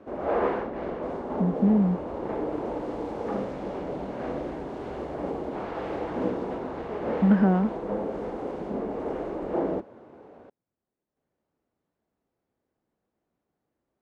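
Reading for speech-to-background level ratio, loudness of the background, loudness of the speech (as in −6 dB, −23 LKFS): 8.0 dB, −32.0 LKFS, −24.0 LKFS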